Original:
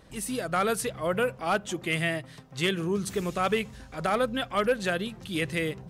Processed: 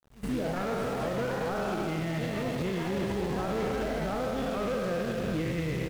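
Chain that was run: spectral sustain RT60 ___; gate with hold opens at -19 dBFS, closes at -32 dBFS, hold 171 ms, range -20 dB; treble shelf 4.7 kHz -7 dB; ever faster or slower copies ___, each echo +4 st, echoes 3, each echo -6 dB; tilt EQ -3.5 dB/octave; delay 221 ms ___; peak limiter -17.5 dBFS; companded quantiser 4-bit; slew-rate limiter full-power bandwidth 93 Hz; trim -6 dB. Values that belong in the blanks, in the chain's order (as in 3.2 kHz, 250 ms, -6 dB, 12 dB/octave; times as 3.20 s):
2.01 s, 108 ms, -7.5 dB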